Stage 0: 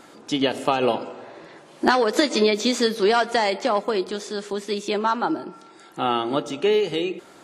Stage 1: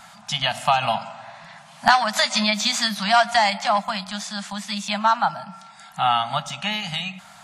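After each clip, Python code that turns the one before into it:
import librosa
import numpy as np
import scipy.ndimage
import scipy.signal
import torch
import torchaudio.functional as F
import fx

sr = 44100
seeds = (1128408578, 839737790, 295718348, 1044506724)

y = scipy.signal.sosfilt(scipy.signal.ellip(3, 1.0, 40, [200.0, 690.0], 'bandstop', fs=sr, output='sos'), x)
y = y * librosa.db_to_amplitude(5.0)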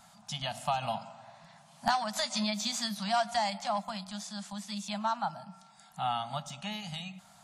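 y = fx.peak_eq(x, sr, hz=1900.0, db=-9.5, octaves=2.1)
y = y * librosa.db_to_amplitude(-7.5)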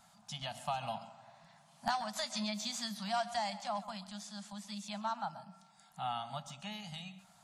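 y = x + 10.0 ** (-16.5 / 20.0) * np.pad(x, (int(132 * sr / 1000.0), 0))[:len(x)]
y = y * librosa.db_to_amplitude(-6.0)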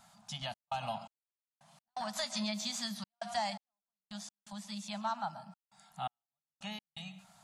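y = fx.step_gate(x, sr, bpm=84, pattern='xxx.xx...x.xxx', floor_db=-60.0, edge_ms=4.5)
y = y * librosa.db_to_amplitude(1.5)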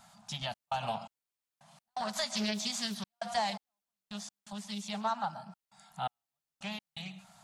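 y = fx.doppler_dist(x, sr, depth_ms=0.37)
y = y * librosa.db_to_amplitude(3.0)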